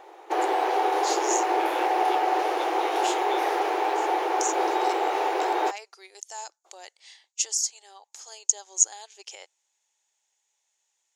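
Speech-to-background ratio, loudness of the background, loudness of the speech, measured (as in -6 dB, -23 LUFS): -5.5 dB, -25.0 LUFS, -30.5 LUFS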